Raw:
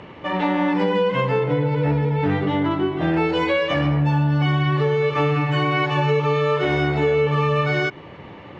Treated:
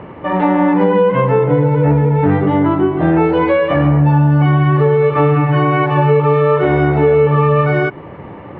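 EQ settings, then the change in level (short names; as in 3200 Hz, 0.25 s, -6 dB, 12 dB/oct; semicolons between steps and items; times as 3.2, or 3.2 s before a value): LPF 1500 Hz 12 dB/oct; +8.0 dB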